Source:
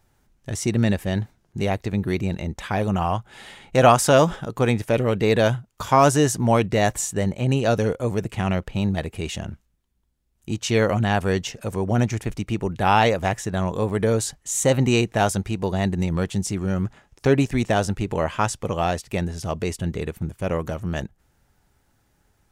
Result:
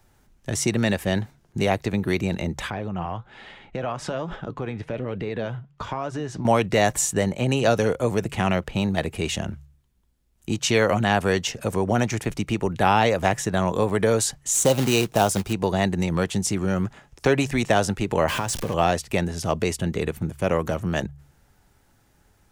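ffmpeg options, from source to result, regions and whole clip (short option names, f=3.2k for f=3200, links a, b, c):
-filter_complex "[0:a]asettb=1/sr,asplit=3[a][b][c];[a]atrim=end=2.704[d];[b]atrim=start=2.7:end=6.45,asetpts=PTS-STARTPTS,afade=t=in:d=0.004:c=qsin,afade=t=out:st=3.746:d=0.004:c=qsin,lowpass=3.4k,acompressor=threshold=-24dB:ratio=10:attack=3.2:release=140:knee=1:detection=peak,flanger=delay=1.2:depth=6.4:regen=84:speed=1.2:shape=triangular[e];[c]atrim=start=6.446[f];[d][e]acrossfade=d=0.004:c1=hsin:c2=qsin[g];[g][f]acrossfade=d=0.004:c1=qsin:c2=hsin,asettb=1/sr,asplit=3[h][i][j];[h]atrim=end=14.534[k];[i]atrim=start=14.53:end=15.53,asetpts=PTS-STARTPTS,afade=t=in:d=0.004:c=qsin,afade=t=out:st=0.996:d=0.004:c=qsin,deesser=0.25,equalizer=f=1.9k:w=2.8:g=-13.5,acrusher=bits=4:mode=log:mix=0:aa=0.000001[l];[j]atrim=start=15.526[m];[k][l]acrossfade=d=0.004:c1=hsin:c2=qsin[n];[n][m]acrossfade=d=0.004:c1=qsin:c2=hsin,asettb=1/sr,asplit=3[o][p][q];[o]atrim=end=18.284[r];[p]atrim=start=18.28:end=18.74,asetpts=PTS-STARTPTS,afade=t=in:d=0.004:c=qsin,afade=t=out:st=0.456:d=0.004:c=qsin,aeval=exprs='val(0)+0.5*0.0376*sgn(val(0))':c=same,bandreject=f=1.3k:w=13,acompressor=threshold=-25dB:ratio=12:attack=3.2:release=140:knee=1:detection=peak[s];[q]atrim=start=18.736[t];[r][s]acrossfade=d=0.004:c1=hsin:c2=qsin[u];[u][t]acrossfade=d=0.004:c1=qsin:c2=hsin,bandreject=f=70.9:t=h:w=4,bandreject=f=141.8:t=h:w=4,acrossover=split=140|500[v][w][x];[v]acompressor=threshold=-37dB:ratio=4[y];[w]acompressor=threshold=-27dB:ratio=4[z];[x]acompressor=threshold=-21dB:ratio=4[aa];[y][z][aa]amix=inputs=3:normalize=0,volume=4dB"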